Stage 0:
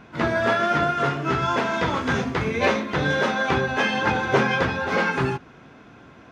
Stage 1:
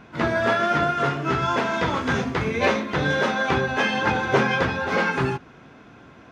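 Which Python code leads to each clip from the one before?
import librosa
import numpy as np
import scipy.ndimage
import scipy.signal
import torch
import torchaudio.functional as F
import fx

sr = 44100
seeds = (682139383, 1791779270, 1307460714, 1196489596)

y = x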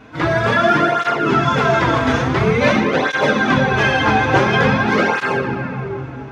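y = fx.room_shoebox(x, sr, seeds[0], volume_m3=210.0, walls='hard', distance_m=0.44)
y = fx.flanger_cancel(y, sr, hz=0.48, depth_ms=5.8)
y = y * librosa.db_to_amplitude(7.0)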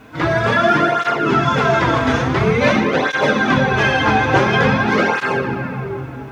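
y = fx.quant_dither(x, sr, seeds[1], bits=10, dither='none')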